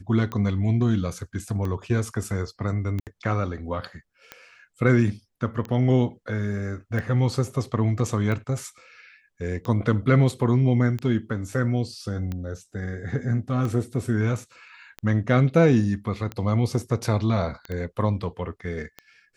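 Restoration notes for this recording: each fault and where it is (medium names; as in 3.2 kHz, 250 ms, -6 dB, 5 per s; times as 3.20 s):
tick 45 rpm -19 dBFS
3.00–3.07 s: dropout 68 ms
17.72 s: pop -21 dBFS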